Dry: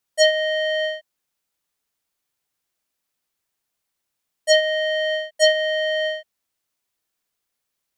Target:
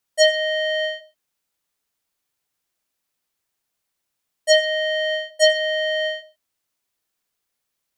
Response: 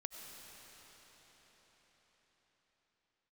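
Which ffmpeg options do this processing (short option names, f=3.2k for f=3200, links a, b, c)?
-filter_complex "[0:a]asplit=2[a][b];[1:a]atrim=start_sample=2205,atrim=end_sample=6174[c];[b][c]afir=irnorm=-1:irlink=0,volume=-2.5dB[d];[a][d]amix=inputs=2:normalize=0,volume=-2.5dB"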